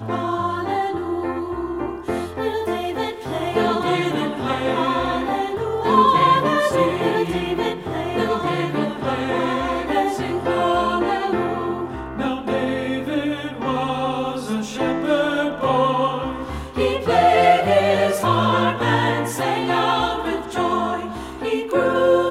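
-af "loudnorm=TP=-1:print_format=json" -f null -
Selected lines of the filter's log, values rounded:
"input_i" : "-20.7",
"input_tp" : "-3.3",
"input_lra" : "5.6",
"input_thresh" : "-30.7",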